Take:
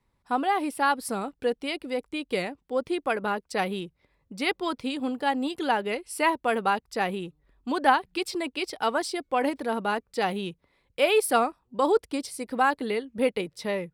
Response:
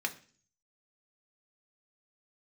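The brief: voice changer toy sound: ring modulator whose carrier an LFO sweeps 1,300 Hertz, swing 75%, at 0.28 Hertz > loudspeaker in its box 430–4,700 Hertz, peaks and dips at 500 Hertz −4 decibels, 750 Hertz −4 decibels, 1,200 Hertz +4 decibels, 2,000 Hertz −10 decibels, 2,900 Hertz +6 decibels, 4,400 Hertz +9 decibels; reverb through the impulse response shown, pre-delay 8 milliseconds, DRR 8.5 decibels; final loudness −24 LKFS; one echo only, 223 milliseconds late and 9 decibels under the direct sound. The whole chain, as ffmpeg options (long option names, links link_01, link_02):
-filter_complex "[0:a]aecho=1:1:223:0.355,asplit=2[link_01][link_02];[1:a]atrim=start_sample=2205,adelay=8[link_03];[link_02][link_03]afir=irnorm=-1:irlink=0,volume=-13dB[link_04];[link_01][link_04]amix=inputs=2:normalize=0,aeval=exprs='val(0)*sin(2*PI*1300*n/s+1300*0.75/0.28*sin(2*PI*0.28*n/s))':channel_layout=same,highpass=430,equalizer=frequency=500:width_type=q:width=4:gain=-4,equalizer=frequency=750:width_type=q:width=4:gain=-4,equalizer=frequency=1200:width_type=q:width=4:gain=4,equalizer=frequency=2000:width_type=q:width=4:gain=-10,equalizer=frequency=2900:width_type=q:width=4:gain=6,equalizer=frequency=4400:width_type=q:width=4:gain=9,lowpass=frequency=4700:width=0.5412,lowpass=frequency=4700:width=1.3066,volume=4dB"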